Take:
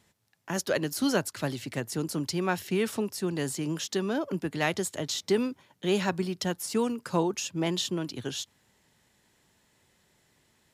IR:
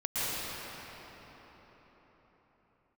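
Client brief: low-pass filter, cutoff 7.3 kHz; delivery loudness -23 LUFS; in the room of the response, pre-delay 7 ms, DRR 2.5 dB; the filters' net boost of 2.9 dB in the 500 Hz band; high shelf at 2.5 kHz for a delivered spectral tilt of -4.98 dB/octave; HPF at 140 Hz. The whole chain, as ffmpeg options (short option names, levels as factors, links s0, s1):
-filter_complex "[0:a]highpass=140,lowpass=7300,equalizer=f=500:t=o:g=4,highshelf=f=2500:g=-4.5,asplit=2[s0][s1];[1:a]atrim=start_sample=2205,adelay=7[s2];[s1][s2]afir=irnorm=-1:irlink=0,volume=0.237[s3];[s0][s3]amix=inputs=2:normalize=0,volume=1.68"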